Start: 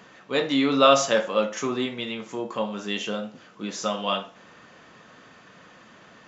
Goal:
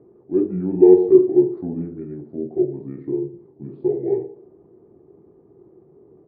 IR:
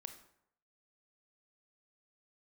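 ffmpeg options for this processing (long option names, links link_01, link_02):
-filter_complex "[0:a]lowpass=frequency=580:width_type=q:width=6.9,asplit=2[link_01][link_02];[1:a]atrim=start_sample=2205[link_03];[link_02][link_03]afir=irnorm=-1:irlink=0,volume=8dB[link_04];[link_01][link_04]amix=inputs=2:normalize=0,asetrate=29433,aresample=44100,atempo=1.49831,volume=-11.5dB"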